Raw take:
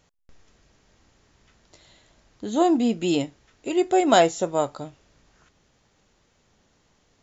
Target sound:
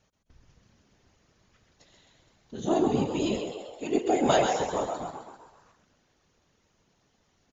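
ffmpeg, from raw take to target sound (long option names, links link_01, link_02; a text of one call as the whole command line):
ffmpeg -i in.wav -filter_complex "[0:a]asplit=8[link_01][link_02][link_03][link_04][link_05][link_06][link_07][link_08];[link_02]adelay=126,afreqshift=75,volume=-6dB[link_09];[link_03]adelay=252,afreqshift=150,volume=-11.5dB[link_10];[link_04]adelay=378,afreqshift=225,volume=-17dB[link_11];[link_05]adelay=504,afreqshift=300,volume=-22.5dB[link_12];[link_06]adelay=630,afreqshift=375,volume=-28.1dB[link_13];[link_07]adelay=756,afreqshift=450,volume=-33.6dB[link_14];[link_08]adelay=882,afreqshift=525,volume=-39.1dB[link_15];[link_01][link_09][link_10][link_11][link_12][link_13][link_14][link_15]amix=inputs=8:normalize=0,afftfilt=real='hypot(re,im)*cos(2*PI*random(0))':imag='hypot(re,im)*sin(2*PI*random(1))':win_size=512:overlap=0.75,asetrate=42336,aresample=44100" out.wav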